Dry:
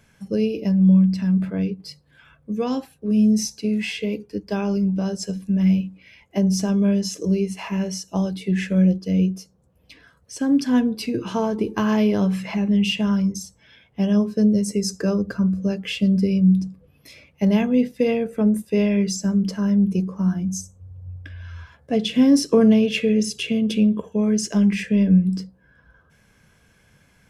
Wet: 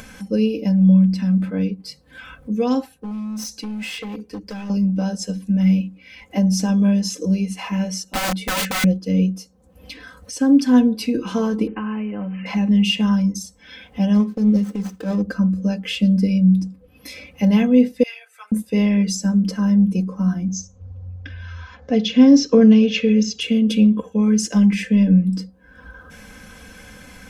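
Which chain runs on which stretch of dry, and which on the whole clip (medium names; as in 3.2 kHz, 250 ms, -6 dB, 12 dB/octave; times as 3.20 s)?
2.92–4.70 s: compression 8:1, threshold -25 dBFS + hard clipper -29.5 dBFS
8.04–8.84 s: comb 5.3 ms, depth 57% + integer overflow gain 19.5 dB + tape noise reduction on one side only decoder only
11.67–12.46 s: block-companded coder 5-bit + compression 4:1, threshold -28 dBFS + brick-wall FIR low-pass 3.1 kHz
14.14–15.22 s: median filter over 25 samples + transient shaper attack -10 dB, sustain -2 dB
18.03–18.52 s: Bessel high-pass 1.5 kHz, order 6 + three-phase chorus
20.48–23.41 s: steep low-pass 6.8 kHz 72 dB/octave + band-stop 320 Hz, Q 8.8
whole clip: comb 3.9 ms, depth 83%; upward compressor, threshold -28 dBFS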